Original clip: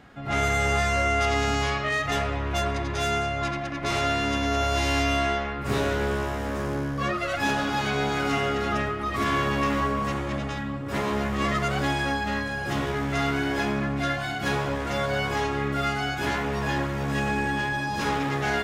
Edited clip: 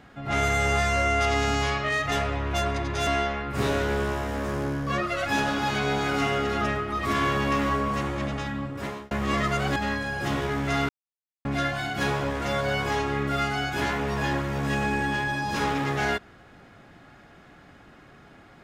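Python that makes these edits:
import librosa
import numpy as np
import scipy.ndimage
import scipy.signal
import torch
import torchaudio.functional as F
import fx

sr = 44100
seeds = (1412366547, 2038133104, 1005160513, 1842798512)

y = fx.edit(x, sr, fx.cut(start_s=3.07, length_s=2.11),
    fx.fade_out_span(start_s=10.77, length_s=0.45),
    fx.cut(start_s=11.87, length_s=0.34),
    fx.silence(start_s=13.34, length_s=0.56), tone=tone)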